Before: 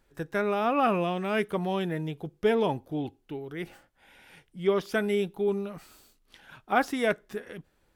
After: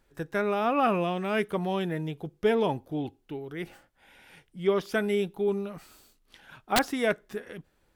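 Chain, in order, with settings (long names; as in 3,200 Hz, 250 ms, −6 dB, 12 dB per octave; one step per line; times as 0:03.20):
wrap-around overflow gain 13.5 dB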